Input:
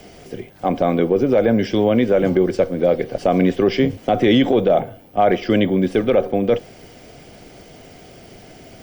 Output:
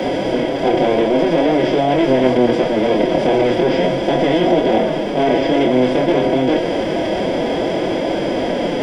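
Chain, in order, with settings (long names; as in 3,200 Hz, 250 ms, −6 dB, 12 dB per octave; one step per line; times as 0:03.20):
compressor on every frequency bin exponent 0.2
chorus effect 0.49 Hz, delay 20 ms, depth 5.7 ms
phase-vocoder pitch shift with formants kept +5 semitones
level −3.5 dB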